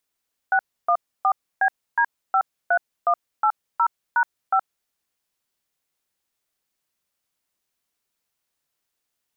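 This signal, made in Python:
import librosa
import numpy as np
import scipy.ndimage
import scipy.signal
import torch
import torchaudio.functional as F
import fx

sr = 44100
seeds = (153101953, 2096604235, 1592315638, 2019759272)

y = fx.dtmf(sr, digits='614BD53180#5', tone_ms=71, gap_ms=293, level_db=-18.0)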